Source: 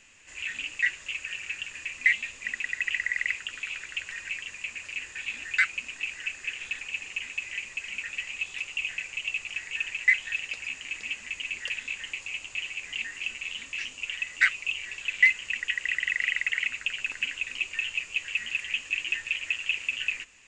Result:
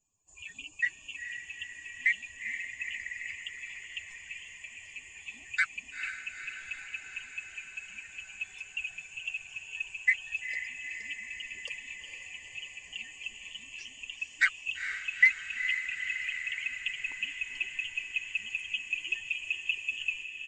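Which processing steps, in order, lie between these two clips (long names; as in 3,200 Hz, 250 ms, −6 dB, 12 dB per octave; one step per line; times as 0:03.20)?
spectral dynamics exaggerated over time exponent 2
feedback delay with all-pass diffusion 457 ms, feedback 68%, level −8 dB
downsampling to 22,050 Hz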